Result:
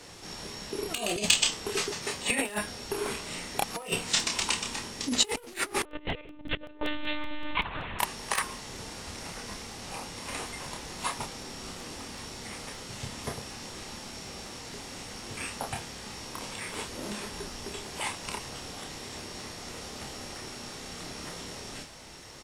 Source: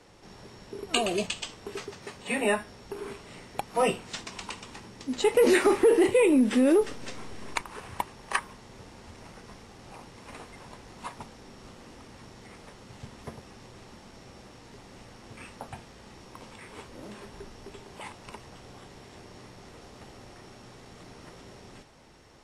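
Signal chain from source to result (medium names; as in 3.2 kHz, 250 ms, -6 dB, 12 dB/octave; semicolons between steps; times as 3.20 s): one-sided wavefolder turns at -18.5 dBFS; doubling 29 ms -4.5 dB; compressor with a negative ratio -30 dBFS, ratio -0.5; 5.85–7.99 s: monotone LPC vocoder at 8 kHz 300 Hz; treble shelf 2.6 kHz +11 dB; crackling interface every 0.19 s, samples 64, repeat, from 0.97 s; trim -1.5 dB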